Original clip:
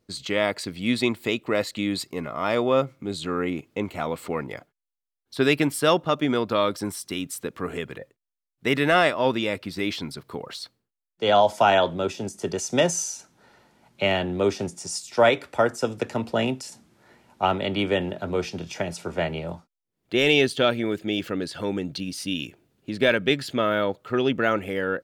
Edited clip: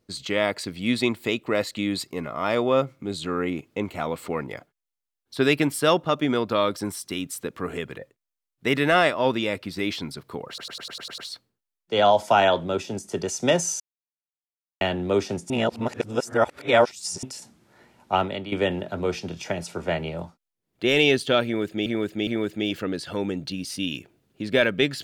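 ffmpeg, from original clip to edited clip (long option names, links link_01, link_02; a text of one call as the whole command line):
ffmpeg -i in.wav -filter_complex "[0:a]asplit=15[link_01][link_02][link_03][link_04][link_05][link_06][link_07][link_08][link_09][link_10][link_11][link_12][link_13][link_14][link_15];[link_01]atrim=end=10.582[link_16];[link_02]atrim=start=10.478:end=10.582[link_17];[link_03]atrim=start=10.478:end=10.582[link_18];[link_04]atrim=start=10.478:end=10.582[link_19];[link_05]atrim=start=10.478:end=10.582[link_20];[link_06]atrim=start=10.478:end=10.582[link_21];[link_07]atrim=start=10.478:end=10.582[link_22];[link_08]atrim=start=10.478:end=13.1,asetpts=PTS-STARTPTS,afade=type=out:start_time=2.618:duration=0.004:curve=hsin[link_23];[link_09]atrim=start=13.1:end=14.11,asetpts=PTS-STARTPTS,volume=0[link_24];[link_10]atrim=start=14.11:end=14.802,asetpts=PTS-STARTPTS,afade=type=in:duration=0.004:curve=hsin[link_25];[link_11]atrim=start=14.798:end=16.532,asetpts=PTS-STARTPTS,areverse[link_26];[link_12]atrim=start=16.528:end=17.82,asetpts=PTS-STARTPTS,afade=type=out:start_time=0.962:duration=0.33:silence=0.223872[link_27];[link_13]atrim=start=17.82:end=21.162,asetpts=PTS-STARTPTS,afade=type=in:duration=0.004:curve=hsin:silence=0.223872[link_28];[link_14]atrim=start=20.748:end=21.162[link_29];[link_15]atrim=start=20.748[link_30];[link_16][link_17]acrossfade=duration=0.004:curve1=hsin:curve2=hsin[link_31];[link_31][link_18]acrossfade=duration=0.004:curve1=hsin:curve2=hsin[link_32];[link_32][link_19]acrossfade=duration=0.004:curve1=hsin:curve2=hsin[link_33];[link_33][link_20]acrossfade=duration=0.004:curve1=hsin:curve2=hsin[link_34];[link_34][link_21]acrossfade=duration=0.004:curve1=hsin:curve2=hsin[link_35];[link_35][link_22]acrossfade=duration=0.004:curve1=hsin:curve2=hsin[link_36];[link_23][link_24][link_25]concat=n=3:v=0:a=1[link_37];[link_36][link_37]acrossfade=duration=0.004:curve1=hsin:curve2=hsin[link_38];[link_38][link_26]acrossfade=duration=0.004:curve1=hsin:curve2=hsin[link_39];[link_27][link_28]concat=n=2:v=0:a=1[link_40];[link_39][link_40]acrossfade=duration=0.004:curve1=hsin:curve2=hsin[link_41];[link_41][link_29]acrossfade=duration=0.004:curve1=hsin:curve2=hsin[link_42];[link_42][link_30]acrossfade=duration=0.004:curve1=hsin:curve2=hsin" out.wav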